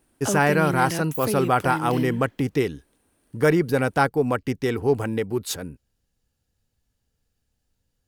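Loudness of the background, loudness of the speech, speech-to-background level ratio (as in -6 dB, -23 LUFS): -29.5 LUFS, -23.0 LUFS, 6.5 dB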